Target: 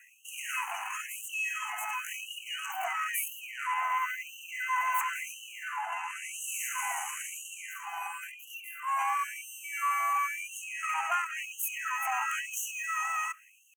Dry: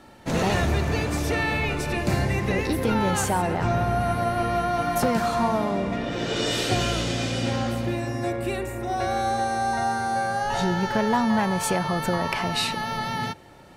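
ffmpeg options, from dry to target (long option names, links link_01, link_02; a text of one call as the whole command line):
ffmpeg -i in.wav -af "asetrate=64194,aresample=44100,atempo=0.686977,asoftclip=type=tanh:threshold=-23dB,asuperstop=centerf=4300:order=20:qfactor=1.4,afftfilt=real='re*gte(b*sr/1024,660*pow(2700/660,0.5+0.5*sin(2*PI*0.97*pts/sr)))':imag='im*gte(b*sr/1024,660*pow(2700/660,0.5+0.5*sin(2*PI*0.97*pts/sr)))':win_size=1024:overlap=0.75" out.wav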